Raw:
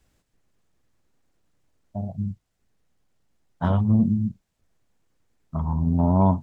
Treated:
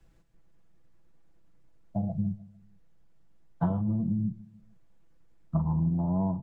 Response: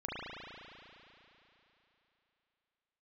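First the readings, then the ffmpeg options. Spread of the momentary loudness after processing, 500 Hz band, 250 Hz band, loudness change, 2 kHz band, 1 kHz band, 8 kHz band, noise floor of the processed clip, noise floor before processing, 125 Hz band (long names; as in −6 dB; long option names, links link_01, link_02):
8 LU, −9.0 dB, −6.0 dB, −6.5 dB, below −10 dB, −10.5 dB, can't be measured, −58 dBFS, −76 dBFS, −6.0 dB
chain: -filter_complex "[0:a]acrossover=split=120|1100[link_01][link_02][link_03];[link_01]acompressor=threshold=-27dB:ratio=4[link_04];[link_02]acompressor=threshold=-21dB:ratio=4[link_05];[link_03]acompressor=threshold=-50dB:ratio=4[link_06];[link_04][link_05][link_06]amix=inputs=3:normalize=0,highshelf=frequency=2900:gain=-9,acompressor=threshold=-28dB:ratio=6,lowshelf=frequency=170:gain=6,aecho=1:1:6:0.64,asplit=2[link_07][link_08];[link_08]adelay=150,lowpass=frequency=1100:poles=1,volume=-19.5dB,asplit=2[link_09][link_10];[link_10]adelay=150,lowpass=frequency=1100:poles=1,volume=0.45,asplit=2[link_11][link_12];[link_12]adelay=150,lowpass=frequency=1100:poles=1,volume=0.45[link_13];[link_09][link_11][link_13]amix=inputs=3:normalize=0[link_14];[link_07][link_14]amix=inputs=2:normalize=0"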